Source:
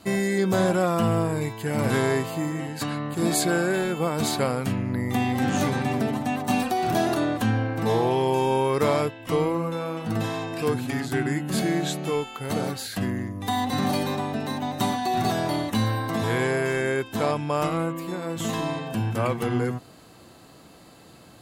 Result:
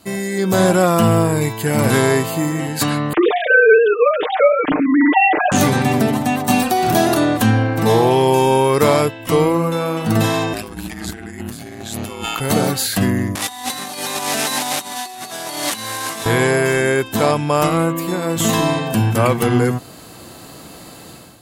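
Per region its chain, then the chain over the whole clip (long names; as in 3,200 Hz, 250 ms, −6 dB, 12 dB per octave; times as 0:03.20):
0:03.13–0:05.52: three sine waves on the formant tracks + comb filter 6.6 ms, depth 82%
0:10.53–0:12.40: parametric band 450 Hz −7 dB 0.76 octaves + compressor whose output falls as the input rises −38 dBFS + ring modulation 55 Hz
0:13.35–0:16.26: linear delta modulator 64 kbit/s, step −29 dBFS + high-pass filter 1,100 Hz 6 dB per octave + compressor whose output falls as the input rises −36 dBFS, ratio −0.5
whole clip: high-shelf EQ 7,200 Hz +8.5 dB; automatic gain control gain up to 11.5 dB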